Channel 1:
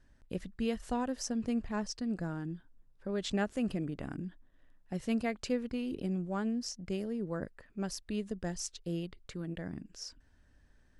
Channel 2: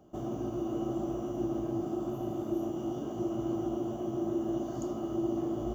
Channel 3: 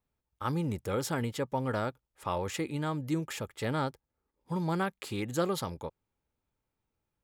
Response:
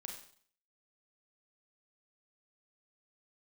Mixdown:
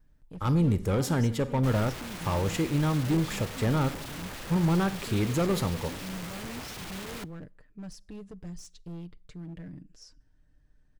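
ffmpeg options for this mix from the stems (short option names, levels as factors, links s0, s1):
-filter_complex "[0:a]aecho=1:1:6.6:0.54,asoftclip=type=hard:threshold=0.0188,volume=0.335,asplit=2[s0][s1];[s1]volume=0.119[s2];[1:a]aeval=exprs='(mod(84.1*val(0)+1,2)-1)/84.1':c=same,adelay=1500,volume=1.06,asplit=2[s3][s4];[s4]volume=0.0944[s5];[2:a]asoftclip=type=hard:threshold=0.0398,volume=0.944,asplit=2[s6][s7];[s7]volume=0.631[s8];[3:a]atrim=start_sample=2205[s9];[s2][s5][s8]amix=inputs=3:normalize=0[s10];[s10][s9]afir=irnorm=-1:irlink=0[s11];[s0][s3][s6][s11]amix=inputs=4:normalize=0,lowshelf=f=280:g=10"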